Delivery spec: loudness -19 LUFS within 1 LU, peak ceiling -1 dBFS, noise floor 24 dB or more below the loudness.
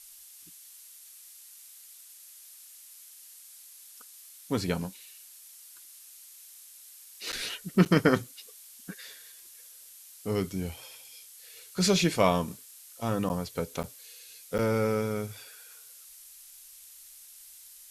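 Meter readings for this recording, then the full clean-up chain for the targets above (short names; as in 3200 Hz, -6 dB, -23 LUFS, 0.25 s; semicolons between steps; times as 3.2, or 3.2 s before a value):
dropouts 5; longest dropout 8.9 ms; noise floor -51 dBFS; noise floor target -53 dBFS; loudness -29.0 LUFS; peak -7.5 dBFS; loudness target -19.0 LUFS
-> interpolate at 7.32/7.85/13.29/13.83/14.58, 8.9 ms; denoiser 6 dB, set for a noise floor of -51 dBFS; gain +10 dB; limiter -1 dBFS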